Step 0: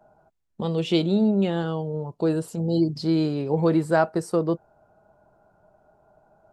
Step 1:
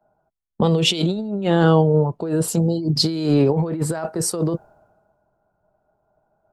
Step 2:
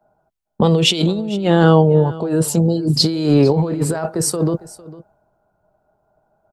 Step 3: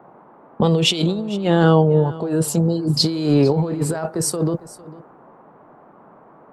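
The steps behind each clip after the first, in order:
compressor with a negative ratio -27 dBFS, ratio -1; treble shelf 5 kHz +5 dB; three bands expanded up and down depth 70%; trim +7.5 dB
delay 454 ms -19 dB; trim +3.5 dB
band noise 140–1100 Hz -45 dBFS; trim -2.5 dB

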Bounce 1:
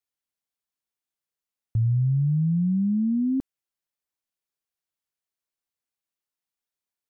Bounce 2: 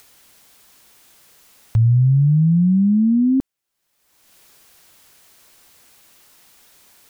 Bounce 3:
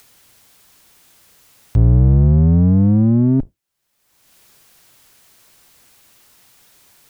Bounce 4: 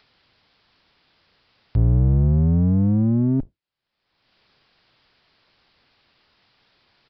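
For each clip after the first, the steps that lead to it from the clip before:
upward compressor, threshold -35 dBFS; trim +8 dB
octave divider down 1 oct, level 0 dB
resampled via 11.025 kHz; trim -5.5 dB

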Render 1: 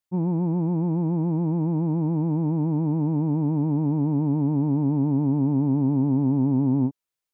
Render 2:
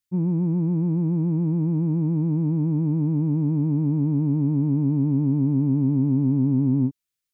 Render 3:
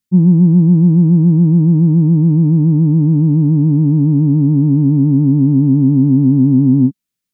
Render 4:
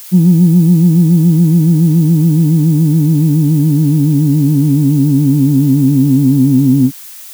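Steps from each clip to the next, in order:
peaking EQ 740 Hz -14.5 dB 1.4 oct; trim +3 dB
peaking EQ 200 Hz +13 dB 0.97 oct; trim +3.5 dB
added noise blue -33 dBFS; trim +1 dB

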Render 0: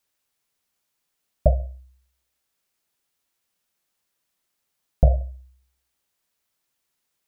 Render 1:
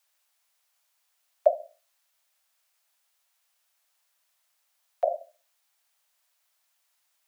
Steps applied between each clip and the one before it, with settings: steep high-pass 580 Hz 48 dB/octave; trim +4 dB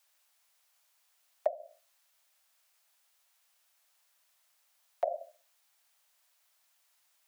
compression 16:1, threshold -28 dBFS, peak gain reduction 16 dB; trim +1.5 dB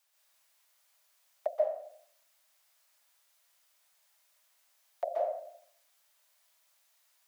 plate-style reverb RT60 0.63 s, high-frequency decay 0.85×, pre-delay 120 ms, DRR -3.5 dB; trim -3.5 dB

